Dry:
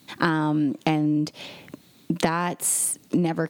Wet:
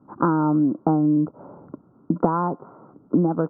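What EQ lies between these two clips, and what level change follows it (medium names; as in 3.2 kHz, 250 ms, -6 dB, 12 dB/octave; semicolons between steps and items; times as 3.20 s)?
rippled Chebyshev low-pass 1.4 kHz, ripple 3 dB; +4.0 dB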